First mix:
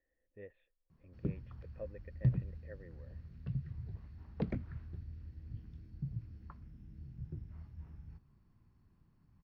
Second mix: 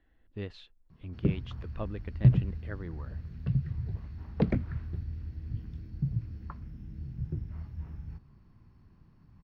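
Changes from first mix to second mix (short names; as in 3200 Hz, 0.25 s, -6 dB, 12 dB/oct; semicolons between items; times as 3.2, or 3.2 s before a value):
speech: remove vocal tract filter e; background +9.5 dB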